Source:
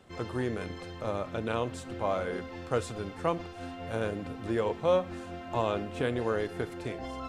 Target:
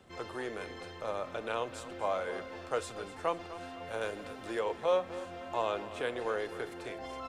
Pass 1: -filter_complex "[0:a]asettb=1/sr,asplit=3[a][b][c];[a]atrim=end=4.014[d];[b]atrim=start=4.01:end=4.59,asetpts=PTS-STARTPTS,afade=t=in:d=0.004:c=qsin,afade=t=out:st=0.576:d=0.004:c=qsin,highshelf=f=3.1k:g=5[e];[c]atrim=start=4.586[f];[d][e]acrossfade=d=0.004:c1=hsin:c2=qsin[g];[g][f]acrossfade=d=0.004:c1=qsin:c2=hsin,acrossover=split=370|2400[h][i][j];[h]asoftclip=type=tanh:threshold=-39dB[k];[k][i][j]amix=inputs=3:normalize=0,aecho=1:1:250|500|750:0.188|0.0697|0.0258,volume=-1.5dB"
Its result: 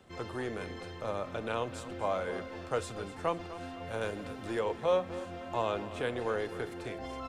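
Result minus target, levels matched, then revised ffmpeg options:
soft clip: distortion -5 dB
-filter_complex "[0:a]asettb=1/sr,asplit=3[a][b][c];[a]atrim=end=4.014[d];[b]atrim=start=4.01:end=4.59,asetpts=PTS-STARTPTS,afade=t=in:d=0.004:c=qsin,afade=t=out:st=0.576:d=0.004:c=qsin,highshelf=f=3.1k:g=5[e];[c]atrim=start=4.586[f];[d][e]acrossfade=d=0.004:c1=hsin:c2=qsin[g];[g][f]acrossfade=d=0.004:c1=qsin:c2=hsin,acrossover=split=370|2400[h][i][j];[h]asoftclip=type=tanh:threshold=-50.5dB[k];[k][i][j]amix=inputs=3:normalize=0,aecho=1:1:250|500|750:0.188|0.0697|0.0258,volume=-1.5dB"

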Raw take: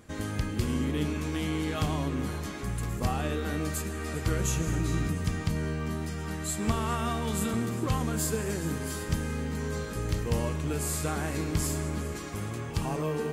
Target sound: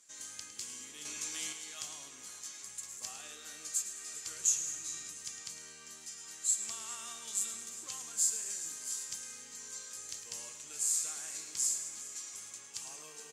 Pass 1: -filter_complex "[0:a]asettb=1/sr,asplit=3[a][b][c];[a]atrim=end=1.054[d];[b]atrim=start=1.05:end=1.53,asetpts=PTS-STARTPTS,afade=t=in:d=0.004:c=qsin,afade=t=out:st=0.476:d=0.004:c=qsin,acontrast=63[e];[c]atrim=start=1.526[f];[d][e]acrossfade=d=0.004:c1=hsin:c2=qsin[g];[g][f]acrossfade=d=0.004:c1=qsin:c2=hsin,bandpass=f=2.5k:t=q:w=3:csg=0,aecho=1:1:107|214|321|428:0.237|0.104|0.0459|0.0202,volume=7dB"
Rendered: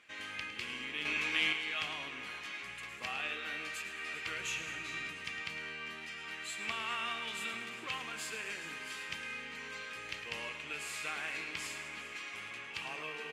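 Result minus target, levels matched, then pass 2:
2000 Hz band +17.5 dB
-filter_complex "[0:a]asettb=1/sr,asplit=3[a][b][c];[a]atrim=end=1.054[d];[b]atrim=start=1.05:end=1.53,asetpts=PTS-STARTPTS,afade=t=in:d=0.004:c=qsin,afade=t=out:st=0.476:d=0.004:c=qsin,acontrast=63[e];[c]atrim=start=1.526[f];[d][e]acrossfade=d=0.004:c1=hsin:c2=qsin[g];[g][f]acrossfade=d=0.004:c1=qsin:c2=hsin,bandpass=f=6.9k:t=q:w=3:csg=0,aecho=1:1:107|214|321|428:0.237|0.104|0.0459|0.0202,volume=7dB"

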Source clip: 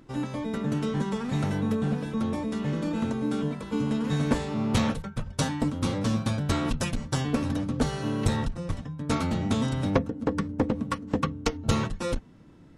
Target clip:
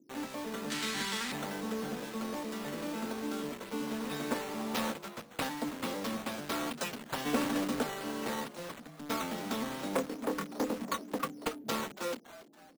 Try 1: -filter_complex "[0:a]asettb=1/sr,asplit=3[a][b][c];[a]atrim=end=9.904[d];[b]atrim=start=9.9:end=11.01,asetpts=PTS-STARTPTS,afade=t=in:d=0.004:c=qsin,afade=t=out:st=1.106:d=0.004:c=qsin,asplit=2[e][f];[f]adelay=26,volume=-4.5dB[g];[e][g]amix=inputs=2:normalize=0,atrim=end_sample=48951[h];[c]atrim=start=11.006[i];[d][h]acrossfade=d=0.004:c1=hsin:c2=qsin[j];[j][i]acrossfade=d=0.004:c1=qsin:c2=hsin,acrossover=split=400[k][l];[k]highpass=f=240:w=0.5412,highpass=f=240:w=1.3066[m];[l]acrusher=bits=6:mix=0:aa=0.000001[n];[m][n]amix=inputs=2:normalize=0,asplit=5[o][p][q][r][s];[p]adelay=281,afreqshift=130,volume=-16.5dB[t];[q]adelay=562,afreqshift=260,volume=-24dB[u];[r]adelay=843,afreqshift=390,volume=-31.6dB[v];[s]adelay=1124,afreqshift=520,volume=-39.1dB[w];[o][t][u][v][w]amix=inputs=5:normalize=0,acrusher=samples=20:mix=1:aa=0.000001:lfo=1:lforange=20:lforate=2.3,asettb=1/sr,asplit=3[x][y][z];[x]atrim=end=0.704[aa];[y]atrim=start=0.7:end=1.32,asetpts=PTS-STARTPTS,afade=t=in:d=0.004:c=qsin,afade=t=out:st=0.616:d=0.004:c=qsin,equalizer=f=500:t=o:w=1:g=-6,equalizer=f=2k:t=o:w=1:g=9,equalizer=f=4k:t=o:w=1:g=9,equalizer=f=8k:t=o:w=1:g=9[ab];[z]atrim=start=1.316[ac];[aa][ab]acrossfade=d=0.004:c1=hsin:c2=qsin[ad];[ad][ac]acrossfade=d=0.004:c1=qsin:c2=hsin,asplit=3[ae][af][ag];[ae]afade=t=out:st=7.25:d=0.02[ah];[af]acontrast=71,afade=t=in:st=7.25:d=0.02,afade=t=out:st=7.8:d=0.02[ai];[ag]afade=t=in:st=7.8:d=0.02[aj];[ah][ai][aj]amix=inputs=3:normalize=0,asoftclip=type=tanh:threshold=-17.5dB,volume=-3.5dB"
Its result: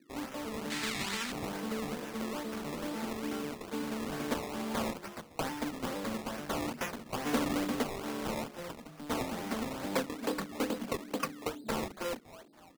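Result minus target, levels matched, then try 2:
decimation with a swept rate: distortion +7 dB
-filter_complex "[0:a]asettb=1/sr,asplit=3[a][b][c];[a]atrim=end=9.904[d];[b]atrim=start=9.9:end=11.01,asetpts=PTS-STARTPTS,afade=t=in:d=0.004:c=qsin,afade=t=out:st=1.106:d=0.004:c=qsin,asplit=2[e][f];[f]adelay=26,volume=-4.5dB[g];[e][g]amix=inputs=2:normalize=0,atrim=end_sample=48951[h];[c]atrim=start=11.006[i];[d][h]acrossfade=d=0.004:c1=hsin:c2=qsin[j];[j][i]acrossfade=d=0.004:c1=qsin:c2=hsin,acrossover=split=400[k][l];[k]highpass=f=240:w=0.5412,highpass=f=240:w=1.3066[m];[l]acrusher=bits=6:mix=0:aa=0.000001[n];[m][n]amix=inputs=2:normalize=0,asplit=5[o][p][q][r][s];[p]adelay=281,afreqshift=130,volume=-16.5dB[t];[q]adelay=562,afreqshift=260,volume=-24dB[u];[r]adelay=843,afreqshift=390,volume=-31.6dB[v];[s]adelay=1124,afreqshift=520,volume=-39.1dB[w];[o][t][u][v][w]amix=inputs=5:normalize=0,acrusher=samples=6:mix=1:aa=0.000001:lfo=1:lforange=6:lforate=2.3,asettb=1/sr,asplit=3[x][y][z];[x]atrim=end=0.704[aa];[y]atrim=start=0.7:end=1.32,asetpts=PTS-STARTPTS,afade=t=in:d=0.004:c=qsin,afade=t=out:st=0.616:d=0.004:c=qsin,equalizer=f=500:t=o:w=1:g=-6,equalizer=f=2k:t=o:w=1:g=9,equalizer=f=4k:t=o:w=1:g=9,equalizer=f=8k:t=o:w=1:g=9[ab];[z]atrim=start=1.316[ac];[aa][ab]acrossfade=d=0.004:c1=hsin:c2=qsin[ad];[ad][ac]acrossfade=d=0.004:c1=qsin:c2=hsin,asplit=3[ae][af][ag];[ae]afade=t=out:st=7.25:d=0.02[ah];[af]acontrast=71,afade=t=in:st=7.25:d=0.02,afade=t=out:st=7.8:d=0.02[ai];[ag]afade=t=in:st=7.8:d=0.02[aj];[ah][ai][aj]amix=inputs=3:normalize=0,asoftclip=type=tanh:threshold=-17.5dB,volume=-3.5dB"

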